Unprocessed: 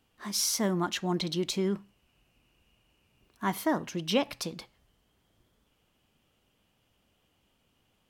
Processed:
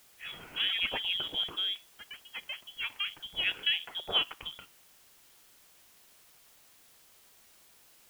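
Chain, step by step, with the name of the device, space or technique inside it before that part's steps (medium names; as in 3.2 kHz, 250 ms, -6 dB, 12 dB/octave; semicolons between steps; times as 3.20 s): ever faster or slower copies 92 ms, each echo +4 st, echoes 3, each echo -6 dB; scrambled radio voice (band-pass 340–3000 Hz; frequency inversion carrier 3.6 kHz; white noise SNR 23 dB)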